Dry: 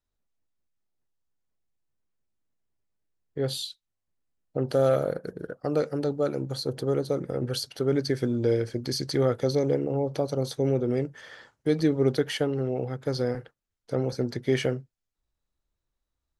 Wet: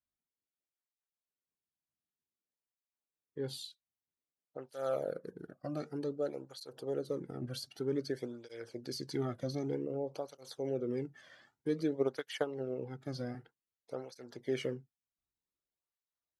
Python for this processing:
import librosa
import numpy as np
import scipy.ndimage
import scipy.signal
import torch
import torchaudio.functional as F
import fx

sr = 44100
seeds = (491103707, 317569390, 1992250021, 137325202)

y = fx.transient(x, sr, attack_db=9, sustain_db=-4, at=(11.95, 12.77), fade=0.02)
y = fx.flanger_cancel(y, sr, hz=0.53, depth_ms=2.4)
y = F.gain(torch.from_numpy(y), -8.5).numpy()